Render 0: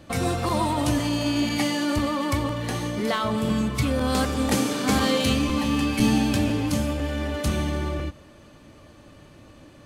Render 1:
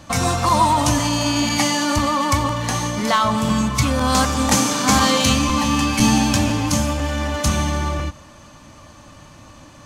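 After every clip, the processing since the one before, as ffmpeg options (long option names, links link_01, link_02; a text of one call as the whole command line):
ffmpeg -i in.wav -af "equalizer=frequency=400:width_type=o:width=0.67:gain=-9,equalizer=frequency=1000:width_type=o:width=0.67:gain=7,equalizer=frequency=6300:width_type=o:width=0.67:gain=9,volume=5.5dB" out.wav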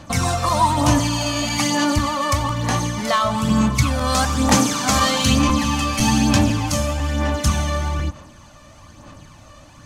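ffmpeg -i in.wav -af "aphaser=in_gain=1:out_gain=1:delay=1.7:decay=0.46:speed=1.1:type=sinusoidal,volume=-2.5dB" out.wav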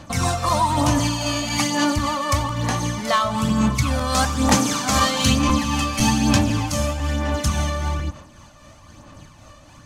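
ffmpeg -i in.wav -af "tremolo=f=3.8:d=0.34" out.wav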